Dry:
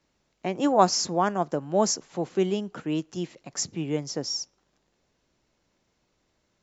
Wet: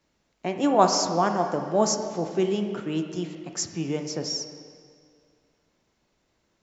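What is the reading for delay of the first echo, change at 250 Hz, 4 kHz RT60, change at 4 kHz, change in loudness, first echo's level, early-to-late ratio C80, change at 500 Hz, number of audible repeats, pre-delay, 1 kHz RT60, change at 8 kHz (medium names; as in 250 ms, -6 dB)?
no echo, +1.0 dB, 1.9 s, +0.5 dB, +1.0 dB, no echo, 7.5 dB, +1.5 dB, no echo, 13 ms, 2.1 s, no reading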